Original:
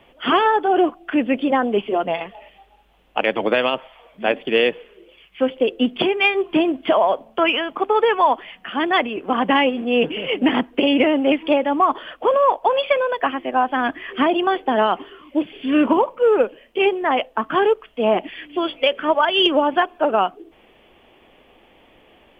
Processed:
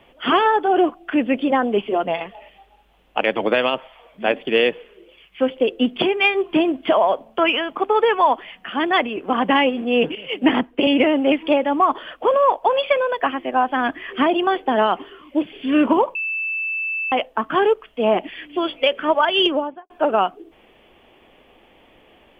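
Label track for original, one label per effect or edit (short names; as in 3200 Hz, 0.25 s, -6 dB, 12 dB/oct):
10.150000	10.870000	three-band expander depth 100%
16.150000	17.120000	bleep 2640 Hz -21.5 dBFS
19.360000	19.900000	studio fade out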